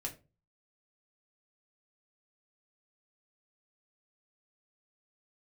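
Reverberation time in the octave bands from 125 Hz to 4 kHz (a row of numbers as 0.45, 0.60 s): 0.55, 0.40, 0.35, 0.25, 0.25, 0.20 s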